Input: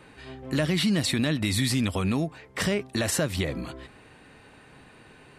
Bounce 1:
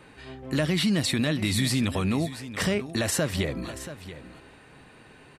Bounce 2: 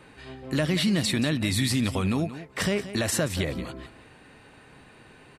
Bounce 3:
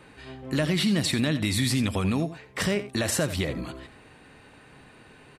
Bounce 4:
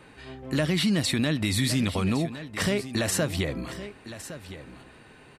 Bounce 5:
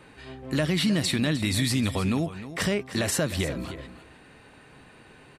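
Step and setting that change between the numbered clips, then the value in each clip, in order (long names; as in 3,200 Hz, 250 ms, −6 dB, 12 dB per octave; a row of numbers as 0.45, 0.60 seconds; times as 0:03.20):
single-tap delay, delay time: 681, 179, 85, 1,111, 308 milliseconds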